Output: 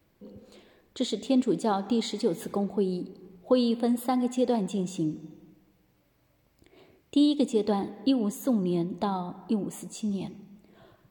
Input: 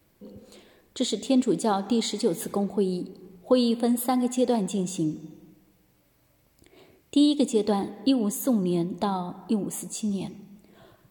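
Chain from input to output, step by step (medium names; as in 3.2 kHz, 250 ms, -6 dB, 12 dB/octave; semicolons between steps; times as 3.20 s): peaking EQ 11 kHz -8.5 dB 1.4 oct; trim -2 dB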